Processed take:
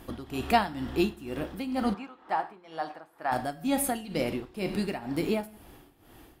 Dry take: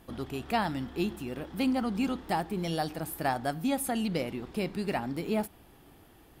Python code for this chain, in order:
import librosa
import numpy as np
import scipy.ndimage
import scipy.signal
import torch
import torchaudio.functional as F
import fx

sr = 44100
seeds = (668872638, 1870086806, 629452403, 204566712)

y = fx.rev_gated(x, sr, seeds[0], gate_ms=200, shape='falling', drr_db=8.0)
y = y * (1.0 - 0.81 / 2.0 + 0.81 / 2.0 * np.cos(2.0 * np.pi * 2.1 * (np.arange(len(y)) / sr)))
y = fx.rider(y, sr, range_db=5, speed_s=2.0)
y = fx.bandpass_q(y, sr, hz=1100.0, q=1.3, at=(1.93, 3.31), fade=0.02)
y = y * 10.0 ** (4.5 / 20.0)